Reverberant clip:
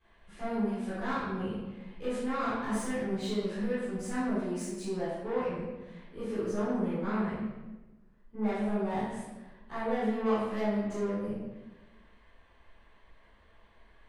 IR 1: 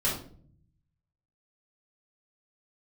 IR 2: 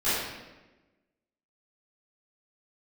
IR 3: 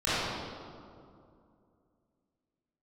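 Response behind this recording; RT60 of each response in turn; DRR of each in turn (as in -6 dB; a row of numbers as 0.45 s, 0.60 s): 2; 0.50 s, 1.1 s, 2.4 s; -8.0 dB, -16.0 dB, -15.0 dB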